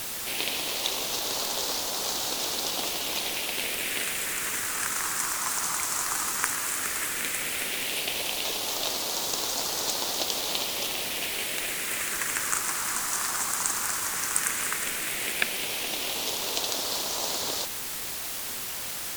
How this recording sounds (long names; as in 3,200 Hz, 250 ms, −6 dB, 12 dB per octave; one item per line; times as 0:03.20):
phaser sweep stages 4, 0.13 Hz, lowest notch 540–2,000 Hz
a quantiser's noise floor 6 bits, dither triangular
Ogg Vorbis